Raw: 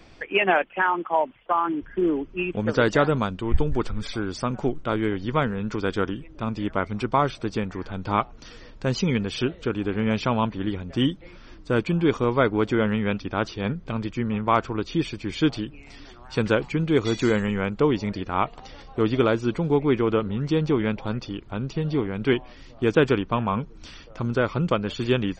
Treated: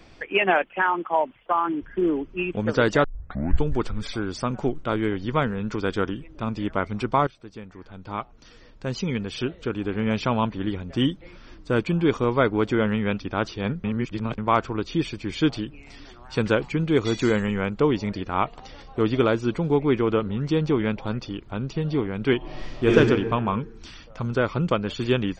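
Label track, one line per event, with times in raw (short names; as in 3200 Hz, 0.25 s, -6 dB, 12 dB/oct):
3.040000	3.040000	tape start 0.58 s
7.270000	10.330000	fade in, from -17 dB
13.840000	14.380000	reverse
22.370000	22.950000	reverb throw, RT60 1.5 s, DRR -6 dB
23.510000	24.320000	bell 770 Hz -> 280 Hz -14.5 dB 0.28 oct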